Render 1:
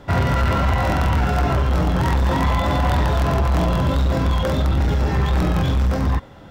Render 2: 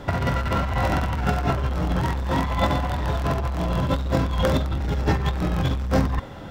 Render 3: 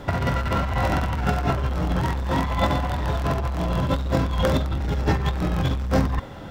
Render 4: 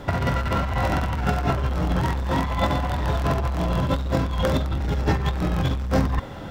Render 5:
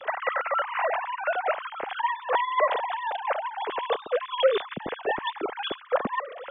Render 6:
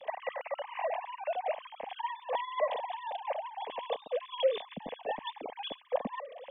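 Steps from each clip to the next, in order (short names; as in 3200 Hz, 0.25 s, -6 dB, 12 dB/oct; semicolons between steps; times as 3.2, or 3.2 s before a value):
negative-ratio compressor -21 dBFS, ratio -0.5
crackle 130/s -49 dBFS
vocal rider within 3 dB 0.5 s
sine-wave speech; gain -5.5 dB
fixed phaser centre 370 Hz, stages 6; gain -5 dB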